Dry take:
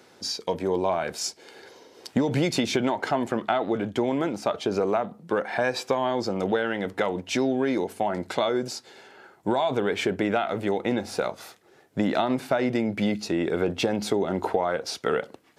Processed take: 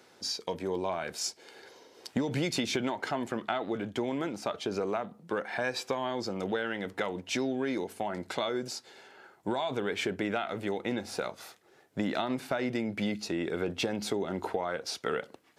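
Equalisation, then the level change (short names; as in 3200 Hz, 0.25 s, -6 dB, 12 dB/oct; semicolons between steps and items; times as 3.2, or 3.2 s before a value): low shelf 460 Hz -3.5 dB; dynamic EQ 720 Hz, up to -4 dB, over -35 dBFS, Q 0.91; -3.5 dB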